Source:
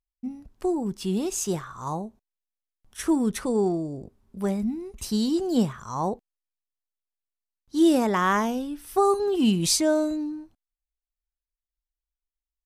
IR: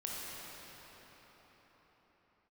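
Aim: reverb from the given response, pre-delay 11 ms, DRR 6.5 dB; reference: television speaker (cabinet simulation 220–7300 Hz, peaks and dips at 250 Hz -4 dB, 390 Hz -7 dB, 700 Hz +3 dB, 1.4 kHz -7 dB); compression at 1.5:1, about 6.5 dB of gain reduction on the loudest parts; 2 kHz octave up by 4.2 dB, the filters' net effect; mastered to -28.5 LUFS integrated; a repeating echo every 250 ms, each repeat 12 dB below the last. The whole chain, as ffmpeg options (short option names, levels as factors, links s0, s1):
-filter_complex "[0:a]equalizer=f=2000:t=o:g=8,acompressor=threshold=0.0224:ratio=1.5,aecho=1:1:250|500|750:0.251|0.0628|0.0157,asplit=2[s0][s1];[1:a]atrim=start_sample=2205,adelay=11[s2];[s1][s2]afir=irnorm=-1:irlink=0,volume=0.355[s3];[s0][s3]amix=inputs=2:normalize=0,highpass=f=220:w=0.5412,highpass=f=220:w=1.3066,equalizer=f=250:t=q:w=4:g=-4,equalizer=f=390:t=q:w=4:g=-7,equalizer=f=700:t=q:w=4:g=3,equalizer=f=1400:t=q:w=4:g=-7,lowpass=f=7300:w=0.5412,lowpass=f=7300:w=1.3066,volume=1.58"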